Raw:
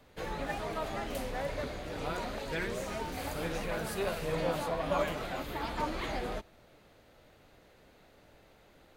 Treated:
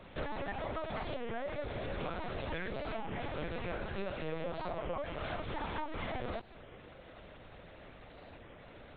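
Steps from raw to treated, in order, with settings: compression 16:1, threshold -42 dBFS, peak gain reduction 17 dB; LPC vocoder at 8 kHz pitch kept; warped record 33 1/3 rpm, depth 160 cents; trim +7.5 dB

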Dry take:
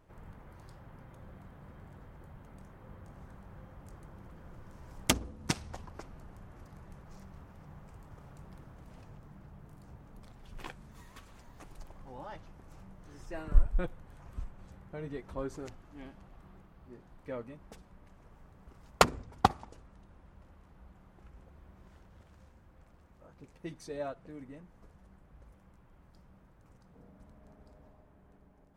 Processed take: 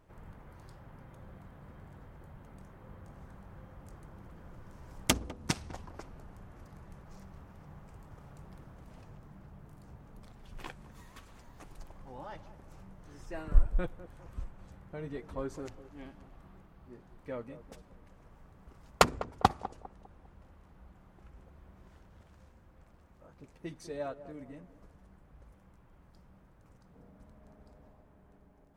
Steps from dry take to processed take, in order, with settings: band-passed feedback delay 201 ms, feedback 43%, band-pass 480 Hz, level -13 dB

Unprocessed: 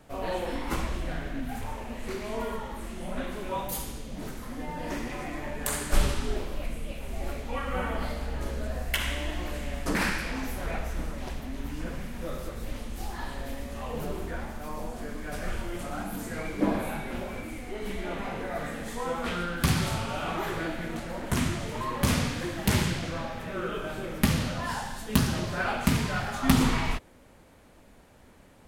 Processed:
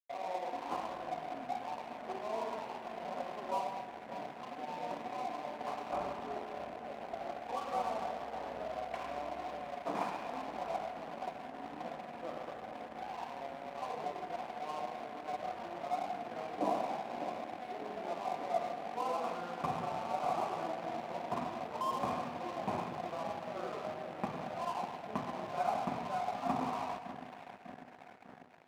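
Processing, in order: level rider gain up to 4 dB; cascade formant filter a; band-stop 1.1 kHz, Q 18; in parallel at +1.5 dB: compression, threshold -54 dBFS, peak gain reduction 21 dB; on the sum: dynamic bell 770 Hz, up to -7 dB, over -51 dBFS, Q 2.4; filtered feedback delay 596 ms, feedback 79%, low-pass 910 Hz, level -9 dB; crossover distortion -54 dBFS; high-pass 180 Hz 12 dB/octave; peaking EQ 1.1 kHz -5 dB 0.42 oct; on a send at -11 dB: reverberation RT60 0.85 s, pre-delay 95 ms; on the sum: trim +10 dB

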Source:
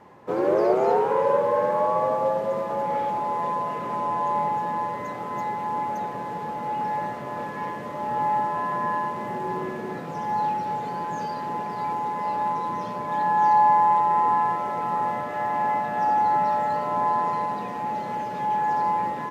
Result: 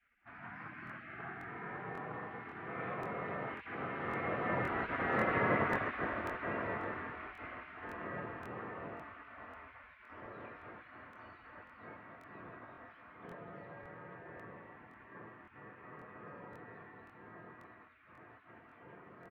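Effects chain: Doppler pass-by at 5.33 s, 18 m/s, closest 9.9 m; dynamic bell 490 Hz, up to -6 dB, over -48 dBFS, Q 0.9; low-pass 2.2 kHz 24 dB/octave; peaking EQ 240 Hz -9 dB 0.73 oct; feedback delay 163 ms, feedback 48%, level -7.5 dB; spectral gate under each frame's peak -20 dB weak; crackling interface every 0.54 s, samples 1024, repeat, from 0.85 s; trim +13 dB

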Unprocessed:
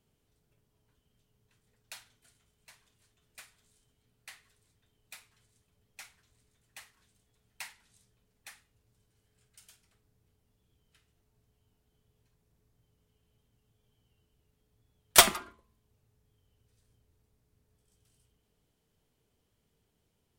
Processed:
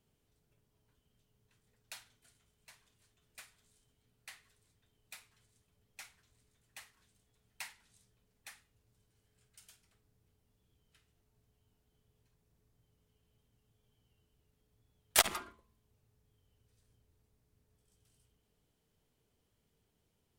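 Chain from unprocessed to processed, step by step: transformer saturation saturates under 1.9 kHz; trim -2 dB

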